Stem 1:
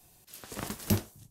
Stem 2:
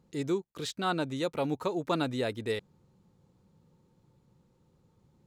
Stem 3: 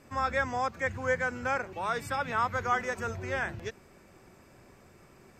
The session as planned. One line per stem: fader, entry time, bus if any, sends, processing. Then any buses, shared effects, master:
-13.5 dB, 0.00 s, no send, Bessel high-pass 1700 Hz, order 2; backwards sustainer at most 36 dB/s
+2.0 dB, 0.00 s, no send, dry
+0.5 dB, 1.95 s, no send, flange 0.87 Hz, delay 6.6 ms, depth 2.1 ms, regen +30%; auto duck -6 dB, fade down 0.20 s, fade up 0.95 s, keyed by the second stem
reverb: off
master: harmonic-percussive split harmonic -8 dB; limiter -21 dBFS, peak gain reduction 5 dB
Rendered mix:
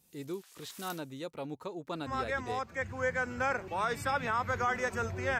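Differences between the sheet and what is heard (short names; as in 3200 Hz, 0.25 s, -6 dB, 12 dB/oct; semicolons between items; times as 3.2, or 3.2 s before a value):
stem 2 +2.0 dB -> -9.0 dB; stem 3: missing flange 0.87 Hz, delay 6.6 ms, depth 2.1 ms, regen +30%; master: missing harmonic-percussive split harmonic -8 dB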